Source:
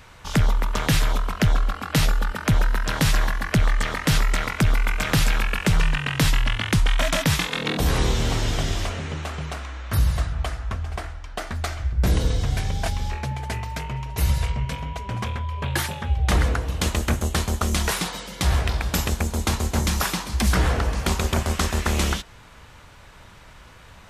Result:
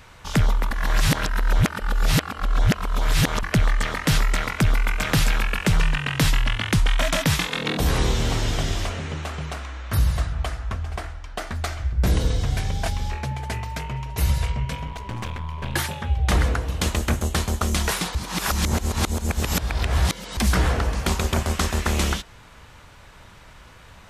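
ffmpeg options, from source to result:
-filter_complex "[0:a]asettb=1/sr,asplit=3[a][b][c];[a]atrim=end=14.874[d];[b]atrim=start=14.87:end=15.75,asetpts=PTS-STARTPTS,afade=t=in:d=0.004:c=qsin,afade=t=out:st=0.876:d=0.004:c=qsin,aeval=exprs='clip(val(0),-1,0.0168)':c=same[e];[c]atrim=start=15.746[f];[d][e]acrossfade=d=0.004:c1=hsin:c2=qsin[g];[g][f]acrossfade=d=0.004:c1=qsin:c2=hsin,asplit=5[h][i][j][k][l];[h]atrim=end=0.712[m];[i]atrim=start=0.708:end=3.432,asetpts=PTS-STARTPTS,areverse[n];[j]atrim=start=3.428:end=18.152[o];[k]atrim=start=18.148:end=20.372,asetpts=PTS-STARTPTS,areverse[p];[l]atrim=start=20.368[q];[m][n]acrossfade=d=0.004:c1=hsin:c2=hsin[r];[r][o]acrossfade=d=0.004:c1=hsin:c2=hsin[s];[s][p]acrossfade=d=0.004:c1=hsin:c2=hsin[t];[t][q]acrossfade=d=0.004:c1=hsin:c2=hsin"

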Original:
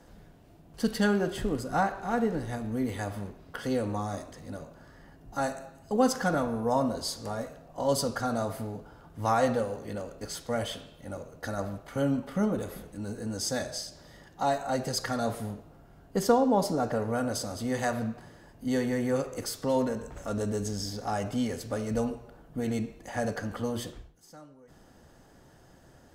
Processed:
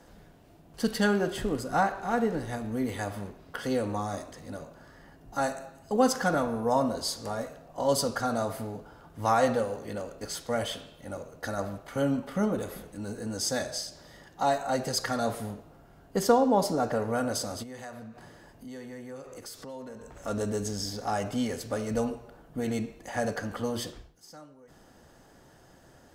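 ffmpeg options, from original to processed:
-filter_complex "[0:a]asplit=3[a][b][c];[a]afade=t=out:st=17.62:d=0.02[d];[b]acompressor=threshold=-44dB:ratio=3:attack=3.2:release=140:knee=1:detection=peak,afade=t=in:st=17.62:d=0.02,afade=t=out:st=20.23:d=0.02[e];[c]afade=t=in:st=20.23:d=0.02[f];[d][e][f]amix=inputs=3:normalize=0,asettb=1/sr,asplit=3[g][h][i];[g]atrim=end=23.734[j];[h]atrim=start=23.73:end=24.38,asetpts=PTS-STARTPTS,afade=t=in:d=0.004:c=qsin,afade=t=out:st=0.646:d=0.004:c=qsin,equalizer=f=5k:w=3.4:g=5.5[k];[i]atrim=start=24.376[l];[j][k]acrossfade=d=0.004:c1=hsin:c2=qsin[m];[m][l]acrossfade=d=0.004:c1=qsin:c2=hsin,lowshelf=f=240:g=-4.5,volume=2dB"

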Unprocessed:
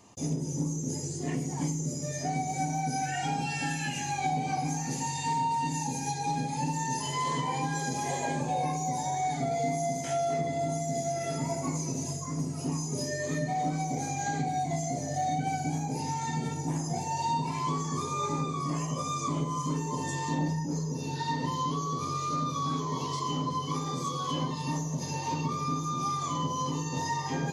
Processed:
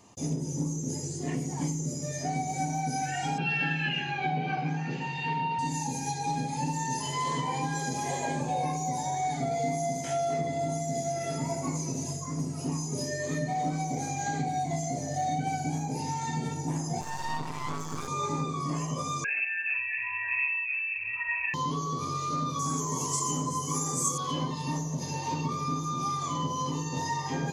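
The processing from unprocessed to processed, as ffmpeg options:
-filter_complex "[0:a]asettb=1/sr,asplit=3[a][b][c];[a]atrim=end=3.384[d];[b]atrim=start=3.38:end=5.59,asetpts=PTS-STARTPTS,afade=t=in:d=0.004:c=qsin,afade=t=out:st=2.206:d=0.004:c=qsin,highpass=140,equalizer=f=170:t=q:w=4:g=7,equalizer=f=260:t=q:w=4:g=-4,equalizer=f=390:t=q:w=4:g=6,equalizer=f=870:t=q:w=4:g=-4,equalizer=f=1.5k:t=q:w=4:g=10,equalizer=f=2.8k:t=q:w=4:g=9,lowpass=f=3.7k:w=0.5412,lowpass=f=3.7k:w=1.3066[e];[c]atrim=start=5.586[f];[d][e]acrossfade=d=0.004:c1=hsin:c2=qsin[g];[g][f]acrossfade=d=0.004:c1=qsin:c2=hsin,asettb=1/sr,asplit=3[h][i][j];[h]atrim=end=17.014[k];[i]atrim=start=17.01:end=18.08,asetpts=PTS-STARTPTS,afade=t=in:d=0.004:c=qsin,afade=t=out:st=1.066:d=0.004:c=qsin,aeval=exprs='max(val(0),0)':c=same[l];[j]atrim=start=18.076[m];[k][l]acrossfade=d=0.004:c1=hsin:c2=qsin[n];[n][m]acrossfade=d=0.004:c1=qsin:c2=hsin,asettb=1/sr,asplit=3[o][p][q];[o]atrim=end=19.244[r];[p]atrim=start=19.24:end=21.54,asetpts=PTS-STARTPTS,afade=t=in:d=0.004:c=qsin,afade=t=out:st=2.296:d=0.004:c=qsin,lowpass=f=2.4k:t=q:w=0.5098,lowpass=f=2.4k:t=q:w=0.6013,lowpass=f=2.4k:t=q:w=0.9,lowpass=f=2.4k:t=q:w=2.563,afreqshift=-2800[s];[q]atrim=start=21.536[t];[r][s]acrossfade=d=0.004:c1=hsin:c2=qsin[u];[u][t]acrossfade=d=0.004:c1=qsin:c2=hsin,asettb=1/sr,asplit=3[v][w][x];[v]atrim=end=22.594[y];[w]atrim=start=22.59:end=24.18,asetpts=PTS-STARTPTS,afade=t=in:d=0.004:c=qsin,afade=t=out:st=1.586:d=0.004:c=qsin,highshelf=f=5.6k:t=q:w=3:g=13.5[z];[x]atrim=start=24.176[aa];[y][z]acrossfade=d=0.004:c1=hsin:c2=qsin[ab];[ab][aa]acrossfade=d=0.004:c1=qsin:c2=hsin"

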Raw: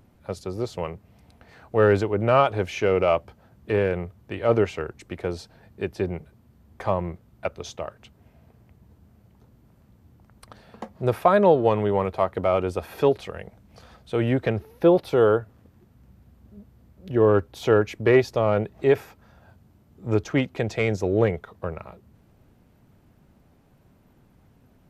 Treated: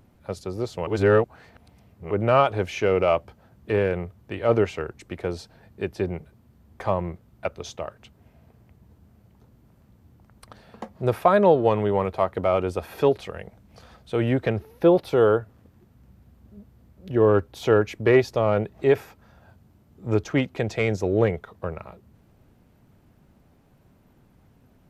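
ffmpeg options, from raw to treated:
-filter_complex "[0:a]asplit=3[a][b][c];[a]atrim=end=0.872[d];[b]atrim=start=0.868:end=2.112,asetpts=PTS-STARTPTS,areverse[e];[c]atrim=start=2.108[f];[d][e]acrossfade=d=0.004:c1=hsin:c2=hsin[g];[g][f]acrossfade=d=0.004:c1=hsin:c2=hsin"

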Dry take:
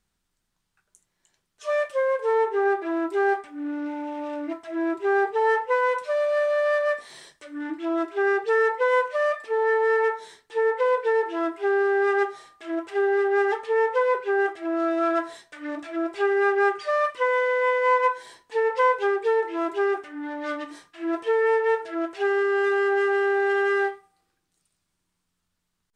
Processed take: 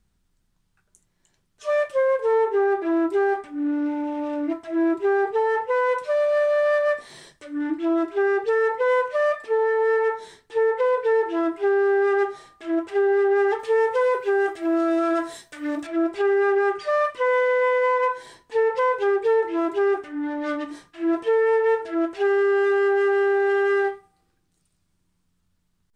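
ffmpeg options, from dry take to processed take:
-filter_complex "[0:a]asettb=1/sr,asplit=3[a][b][c];[a]atrim=end=13.594[d];[b]atrim=start=13.59:end=15.87,asetpts=PTS-STARTPTS,afade=t=in:d=0.004:c=qsin,afade=t=out:st=2.276:d=0.004:c=qsin,aemphasis=mode=production:type=50kf[e];[c]atrim=start=15.866[f];[d][e]acrossfade=d=0.004:c1=hsin:c2=qsin[g];[g][f]acrossfade=d=0.004:c1=qsin:c2=hsin,lowshelf=f=320:g=11.5,alimiter=limit=-14.5dB:level=0:latency=1:release=34"

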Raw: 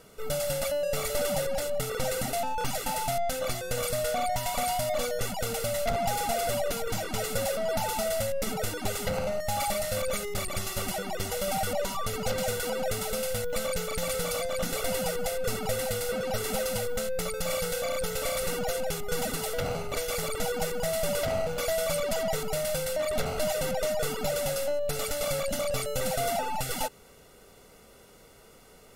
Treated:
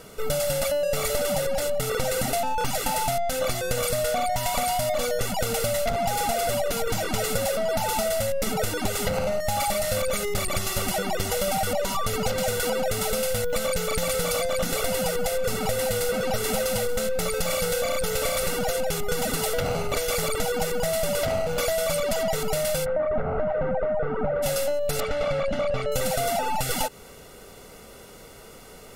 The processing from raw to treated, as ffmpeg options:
-filter_complex "[0:a]asplit=3[a][b][c];[a]afade=t=out:st=15.33:d=0.02[d];[b]aecho=1:1:880:0.224,afade=t=in:st=15.33:d=0.02,afade=t=out:st=18.69:d=0.02[e];[c]afade=t=in:st=18.69:d=0.02[f];[d][e][f]amix=inputs=3:normalize=0,asplit=3[g][h][i];[g]afade=t=out:st=22.84:d=0.02[j];[h]lowpass=f=1.6k:w=0.5412,lowpass=f=1.6k:w=1.3066,afade=t=in:st=22.84:d=0.02,afade=t=out:st=24.42:d=0.02[k];[i]afade=t=in:st=24.42:d=0.02[l];[j][k][l]amix=inputs=3:normalize=0,asettb=1/sr,asplit=3[m][n][o];[m]atrim=end=25.004[p];[n]atrim=start=25:end=25.92,asetpts=PTS-STARTPTS,afade=t=in:d=0.004:c=qsin,afade=t=out:st=0.916:d=0.004:c=qsin,lowpass=2.5k[q];[o]atrim=start=25.916[r];[p][q]acrossfade=d=0.004:c1=hsin:c2=qsin[s];[s][r]acrossfade=d=0.004:c1=qsin:c2=hsin,acompressor=threshold=-30dB:ratio=6,volume=8.5dB"

